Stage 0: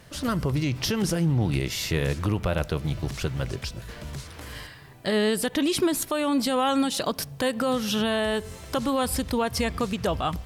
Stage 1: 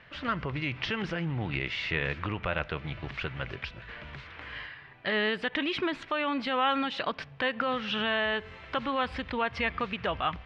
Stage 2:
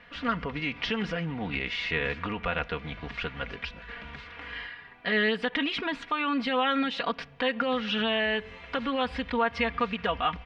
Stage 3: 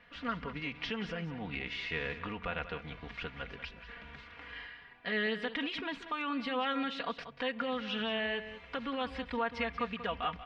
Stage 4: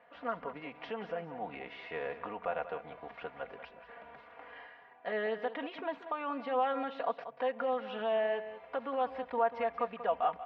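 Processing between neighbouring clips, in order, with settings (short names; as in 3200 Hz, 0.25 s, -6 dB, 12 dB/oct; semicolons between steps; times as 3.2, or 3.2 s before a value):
LPF 2500 Hz 24 dB/oct; tilt shelf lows -10 dB, about 1200 Hz
comb 4.2 ms, depth 74%
echo 0.187 s -12.5 dB; gain -7.5 dB
band-pass 680 Hz, Q 2.4; gain +9 dB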